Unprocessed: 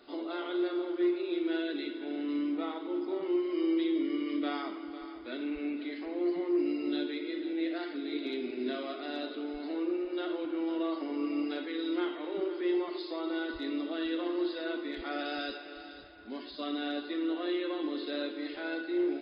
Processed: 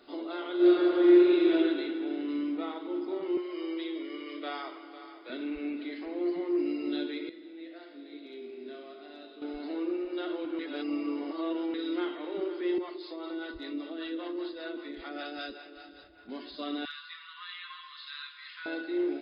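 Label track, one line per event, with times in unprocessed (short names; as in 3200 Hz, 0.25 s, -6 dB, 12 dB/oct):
0.550000	1.520000	reverb throw, RT60 2.2 s, DRR -8 dB
3.370000	5.300000	HPF 390 Hz 24 dB/oct
7.290000	9.420000	resonator 57 Hz, decay 1.6 s, mix 80%
10.590000	11.740000	reverse
12.780000	16.290000	harmonic tremolo 5.1 Hz, crossover 450 Hz
16.850000	18.660000	brick-wall FIR high-pass 980 Hz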